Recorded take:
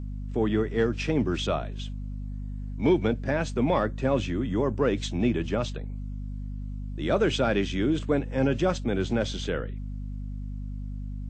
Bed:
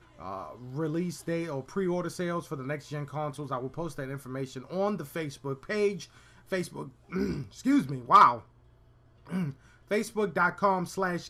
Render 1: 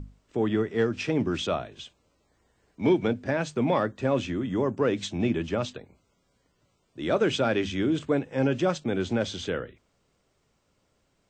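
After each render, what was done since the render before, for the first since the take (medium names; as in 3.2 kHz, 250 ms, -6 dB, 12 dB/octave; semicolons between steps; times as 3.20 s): hum notches 50/100/150/200/250 Hz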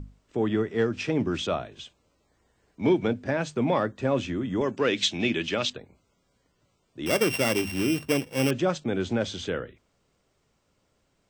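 4.61–5.70 s: frequency weighting D; 7.06–8.51 s: sorted samples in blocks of 16 samples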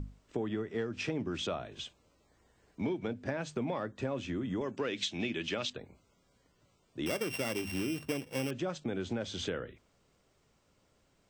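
compression 6:1, threshold -32 dBFS, peak gain reduction 14 dB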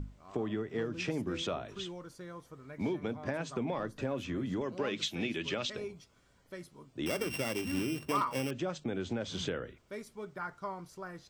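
add bed -14.5 dB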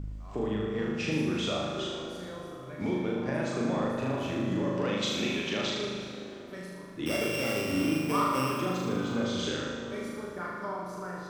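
on a send: flutter echo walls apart 6.6 m, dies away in 1.2 s; on the sum: plate-style reverb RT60 4.6 s, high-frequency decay 0.5×, DRR 6 dB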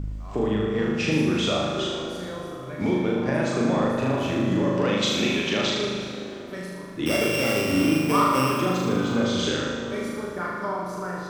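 trim +7 dB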